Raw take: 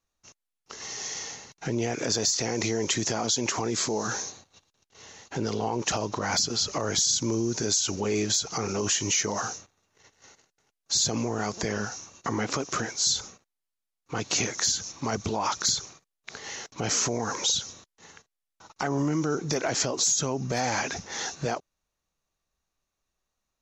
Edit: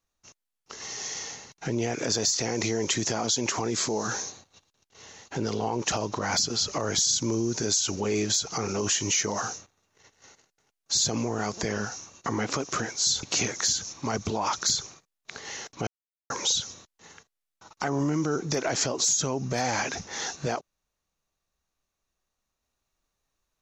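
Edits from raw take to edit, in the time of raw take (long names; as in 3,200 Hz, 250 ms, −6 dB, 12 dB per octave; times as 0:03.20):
0:13.23–0:14.22: remove
0:16.86–0:17.29: silence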